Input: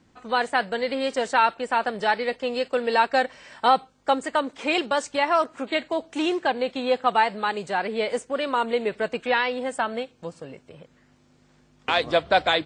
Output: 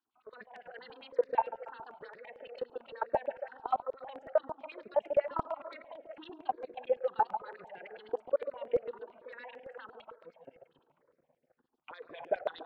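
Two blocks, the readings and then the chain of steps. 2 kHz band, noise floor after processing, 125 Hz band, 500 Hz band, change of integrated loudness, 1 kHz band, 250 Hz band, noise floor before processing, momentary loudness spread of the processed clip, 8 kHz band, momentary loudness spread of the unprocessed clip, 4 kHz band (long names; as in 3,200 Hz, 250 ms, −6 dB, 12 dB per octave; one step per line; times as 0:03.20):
−22.5 dB, −78 dBFS, can't be measured, −9.5 dB, −11.5 dB, −14.0 dB, −22.5 dB, −60 dBFS, 18 LU, below −35 dB, 7 LU, below −25 dB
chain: feedback delay that plays each chunk backwards 175 ms, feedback 50%, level −14 dB
dynamic equaliser 480 Hz, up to +6 dB, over −36 dBFS, Q 1.3
in parallel at −2.5 dB: downward compressor 6 to 1, threshold −32 dBFS, peak gain reduction 19.5 dB
on the sum: auto-filter band-pass sine 9.8 Hz 550–5,900 Hz
high-frequency loss of the air 390 metres
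output level in coarse steps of 22 dB
on a send: delay with a low-pass on its return 141 ms, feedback 40%, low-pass 910 Hz, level −5 dB
on the sum: step-sequenced phaser 8.9 Hz 570–4,100 Hz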